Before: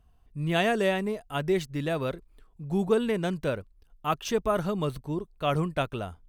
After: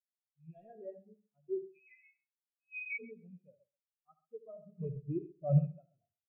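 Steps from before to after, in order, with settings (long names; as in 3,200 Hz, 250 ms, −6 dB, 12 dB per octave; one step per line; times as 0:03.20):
loose part that buzzes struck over −30 dBFS, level −19 dBFS
wrap-around overflow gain 14.5 dB
0:04.80–0:05.59: leveller curve on the samples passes 3
ambience of single reflections 37 ms −15 dB, 76 ms −4.5 dB
0:01.72–0:02.99: voice inversion scrambler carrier 2,700 Hz
on a send: repeating echo 133 ms, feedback 46%, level −5.5 dB
on the sum: every bin expanded away from the loudest bin 4 to 1
level −8 dB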